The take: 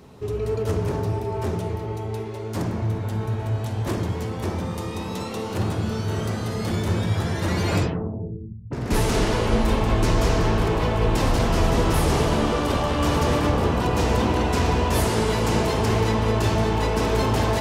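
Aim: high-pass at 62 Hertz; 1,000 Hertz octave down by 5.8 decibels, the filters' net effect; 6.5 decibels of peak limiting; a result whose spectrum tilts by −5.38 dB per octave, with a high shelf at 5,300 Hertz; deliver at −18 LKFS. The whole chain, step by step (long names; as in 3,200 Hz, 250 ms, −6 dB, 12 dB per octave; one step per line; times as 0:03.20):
high-pass filter 62 Hz
parametric band 1,000 Hz −7.5 dB
high-shelf EQ 5,300 Hz +5.5 dB
level +8 dB
brickwall limiter −7.5 dBFS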